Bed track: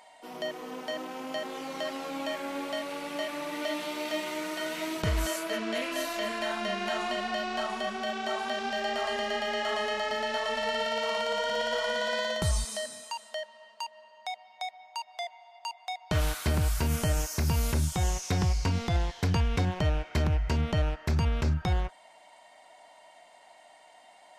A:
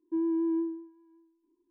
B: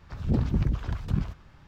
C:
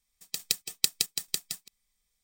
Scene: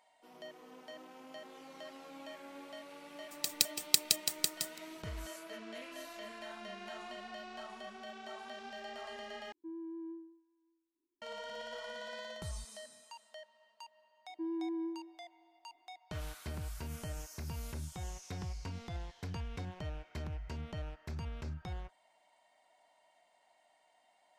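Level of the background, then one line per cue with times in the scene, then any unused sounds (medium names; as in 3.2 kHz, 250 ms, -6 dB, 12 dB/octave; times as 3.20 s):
bed track -15 dB
3.10 s: add C -1.5 dB
9.52 s: replace with A -16 dB
14.27 s: add A -5.5 dB + peaking EQ 160 Hz -8.5 dB 1.9 oct
not used: B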